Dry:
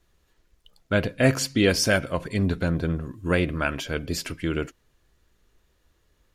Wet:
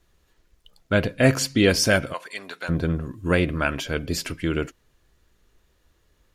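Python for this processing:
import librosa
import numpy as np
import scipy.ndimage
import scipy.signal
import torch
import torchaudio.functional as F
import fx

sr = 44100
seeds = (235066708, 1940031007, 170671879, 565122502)

y = fx.highpass(x, sr, hz=900.0, slope=12, at=(2.12, 2.68), fade=0.02)
y = y * 10.0 ** (2.0 / 20.0)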